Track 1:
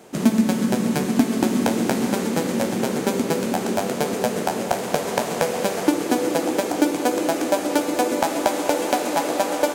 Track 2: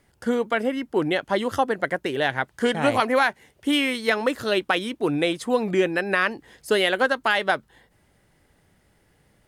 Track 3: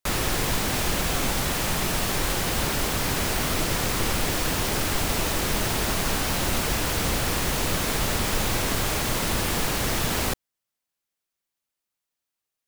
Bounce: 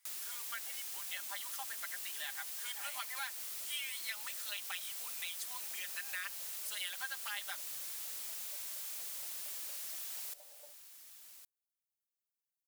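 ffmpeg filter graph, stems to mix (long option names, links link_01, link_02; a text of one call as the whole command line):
ffmpeg -i stem1.wav -i stem2.wav -i stem3.wav -filter_complex "[0:a]bandpass=frequency=600:width_type=q:width=3.3:csg=0,adelay=1000,volume=-18.5dB[link_01];[1:a]highpass=frequency=770:width=0.5412,highpass=frequency=770:width=1.3066,aecho=1:1:5:0.8,volume=-3dB[link_02];[2:a]volume=-11dB,asplit=2[link_03][link_04];[link_04]volume=-16dB,aecho=0:1:1113:1[link_05];[link_01][link_02][link_03][link_05]amix=inputs=4:normalize=0,aderivative,acompressor=threshold=-43dB:ratio=2" out.wav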